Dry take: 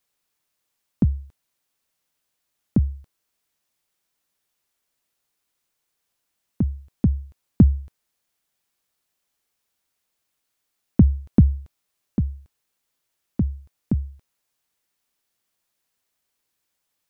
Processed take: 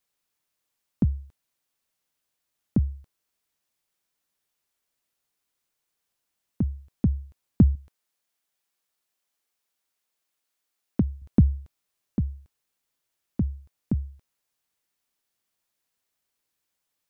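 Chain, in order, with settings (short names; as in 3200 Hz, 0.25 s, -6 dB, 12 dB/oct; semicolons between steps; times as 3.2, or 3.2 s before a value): 7.75–11.22 low shelf 180 Hz -10 dB; gain -3.5 dB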